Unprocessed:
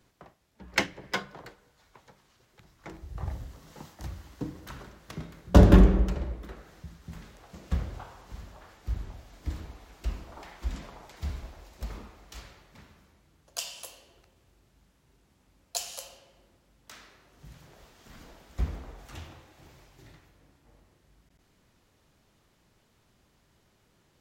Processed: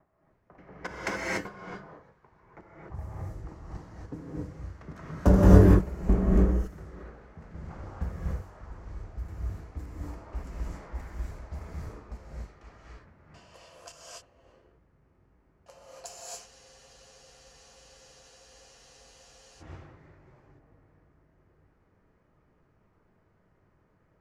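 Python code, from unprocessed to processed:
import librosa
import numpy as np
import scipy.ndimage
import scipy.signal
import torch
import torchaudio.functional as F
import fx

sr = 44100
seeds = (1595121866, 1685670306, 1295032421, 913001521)

y = fx.block_reorder(x, sr, ms=290.0, group=2)
y = fx.peak_eq(y, sr, hz=3500.0, db=-14.5, octaves=0.93)
y = fx.env_lowpass(y, sr, base_hz=2300.0, full_db=-28.5)
y = fx.rev_gated(y, sr, seeds[0], gate_ms=310, shape='rising', drr_db=-5.5)
y = fx.spec_freeze(y, sr, seeds[1], at_s=16.49, hold_s=3.12)
y = y * 10.0 ** (-5.0 / 20.0)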